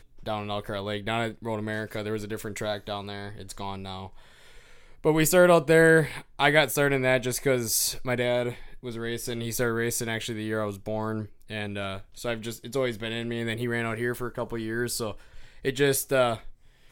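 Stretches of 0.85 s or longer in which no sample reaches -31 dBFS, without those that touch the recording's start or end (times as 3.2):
4.06–5.05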